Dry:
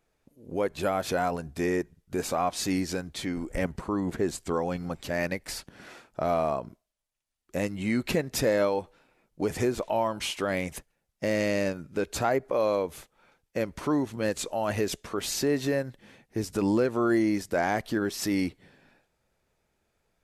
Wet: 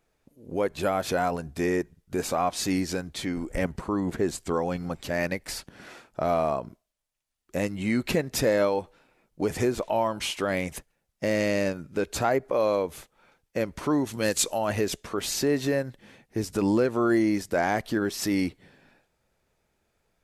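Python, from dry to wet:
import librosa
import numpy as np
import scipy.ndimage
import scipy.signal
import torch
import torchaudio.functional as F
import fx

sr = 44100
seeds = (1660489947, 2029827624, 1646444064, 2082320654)

y = fx.high_shelf(x, sr, hz=3000.0, db=10.5, at=(14.05, 14.57), fade=0.02)
y = F.gain(torch.from_numpy(y), 1.5).numpy()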